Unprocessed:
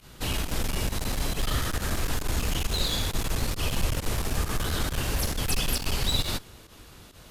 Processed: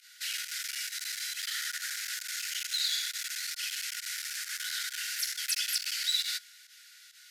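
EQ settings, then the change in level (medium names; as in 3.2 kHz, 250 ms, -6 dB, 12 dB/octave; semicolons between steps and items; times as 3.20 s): rippled Chebyshev high-pass 1.4 kHz, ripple 6 dB; +2.5 dB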